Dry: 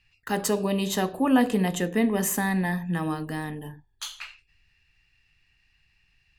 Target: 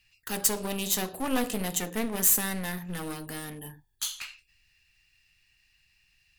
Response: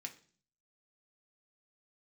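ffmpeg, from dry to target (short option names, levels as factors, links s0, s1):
-af "aeval=exprs='clip(val(0),-1,0.0211)':c=same,crystalizer=i=4:c=0,volume=0.531"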